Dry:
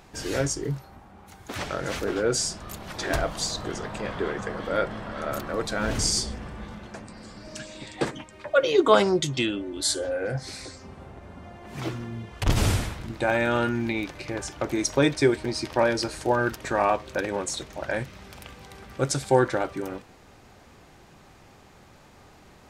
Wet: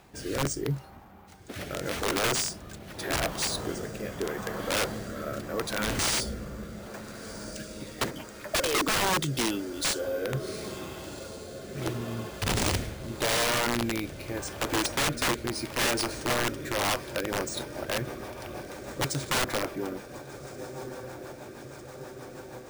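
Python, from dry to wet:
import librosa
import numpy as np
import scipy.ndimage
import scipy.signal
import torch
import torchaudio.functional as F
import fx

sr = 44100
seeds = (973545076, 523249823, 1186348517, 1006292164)

y = fx.highpass(x, sr, hz=45.0, slope=6)
y = fx.echo_diffused(y, sr, ms=1542, feedback_pct=72, wet_db=-15)
y = fx.rotary_switch(y, sr, hz=0.8, then_hz=6.3, switch_at_s=16.83)
y = np.repeat(y[::3], 3)[:len(y)]
y = (np.mod(10.0 ** (20.5 / 20.0) * y + 1.0, 2.0) - 1.0) / 10.0 ** (20.5 / 20.0)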